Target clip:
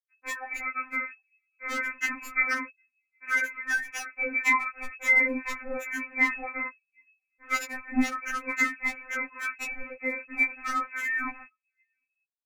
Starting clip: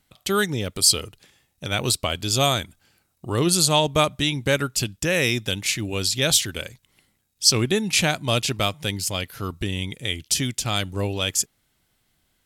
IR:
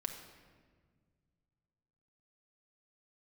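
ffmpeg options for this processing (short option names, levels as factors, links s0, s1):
-filter_complex "[0:a]afftfilt=real='re*pow(10,13/40*sin(2*PI*(1.9*log(max(b,1)*sr/1024/100)/log(2)-(1.2)*(pts-256)/sr)))':imag='im*pow(10,13/40*sin(2*PI*(1.9*log(max(b,1)*sr/1024/100)/log(2)-(1.2)*(pts-256)/sr)))':win_size=1024:overlap=0.75,asplit=2[s0][s1];[s1]alimiter=limit=0.251:level=0:latency=1:release=40,volume=1.06[s2];[s0][s2]amix=inputs=2:normalize=0,flanger=delay=15:depth=5.7:speed=0.29,acrusher=bits=5:mix=0:aa=0.000001,adynamicequalizer=threshold=0.0178:dfrequency=590:dqfactor=6.5:tfrequency=590:tqfactor=6.5:attack=5:release=100:ratio=0.375:range=3:mode=cutabove:tftype=bell,asplit=2[s3][s4];[s4]adelay=758,volume=0.0447,highshelf=f=4000:g=-17.1[s5];[s3][s5]amix=inputs=2:normalize=0,anlmdn=10,lowpass=f=2200:t=q:w=0.5098,lowpass=f=2200:t=q:w=0.6013,lowpass=f=2200:t=q:w=0.9,lowpass=f=2200:t=q:w=2.563,afreqshift=-2600,aecho=1:1:7.1:0.66,acompressor=threshold=0.1:ratio=6,aeval=exprs='0.178*(abs(mod(val(0)/0.178+3,4)-2)-1)':c=same,afftfilt=real='re*3.46*eq(mod(b,12),0)':imag='im*3.46*eq(mod(b,12),0)':win_size=2048:overlap=0.75,volume=1.26"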